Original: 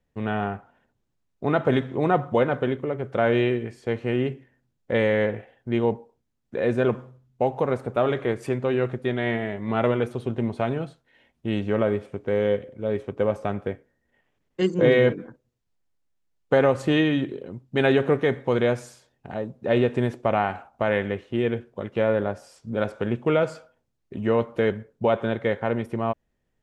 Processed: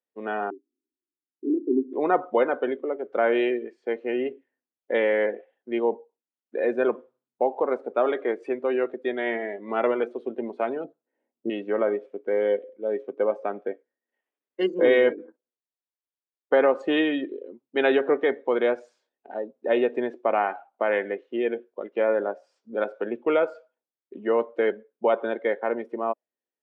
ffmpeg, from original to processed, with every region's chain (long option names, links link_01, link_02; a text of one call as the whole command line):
ffmpeg -i in.wav -filter_complex "[0:a]asettb=1/sr,asplit=3[link_01][link_02][link_03];[link_01]atrim=end=0.504[link_04];[link_02]atrim=start=0.5:end=1.93,asetpts=PTS-STARTPTS,afade=type=in:duration=0.004:curve=qsin,afade=type=out:start_time=1.426:duration=0.004:curve=qsin,asuperpass=centerf=310:order=8:qfactor=2.3,acontrast=59[link_05];[link_03]atrim=start=1.926[link_06];[link_04][link_05]acrossfade=duration=0.004:curve1=hsin:curve2=qsin[link_07];[link_07][link_06]acrossfade=duration=0.004:curve1=qsin:curve2=hsin,asettb=1/sr,asplit=3[link_08][link_09][link_10];[link_08]atrim=end=10.844[link_11];[link_09]atrim=start=10.84:end=11.5,asetpts=PTS-STARTPTS,afade=type=in:duration=0.004:curve=qsin,afade=type=out:start_time=0.656:duration=0.004:curve=qsin,lowpass=1400,tiltshelf=frequency=740:gain=7.5[link_12];[link_10]atrim=start=11.496[link_13];[link_11][link_12]acrossfade=duration=0.004:curve1=hsin:curve2=qsin[link_14];[link_14][link_13]acrossfade=duration=0.004:curve1=qsin:curve2=hsin,highpass=frequency=290:width=0.5412,highpass=frequency=290:width=1.3066,afftdn=noise_reduction=15:noise_floor=-36,lowpass=4900" out.wav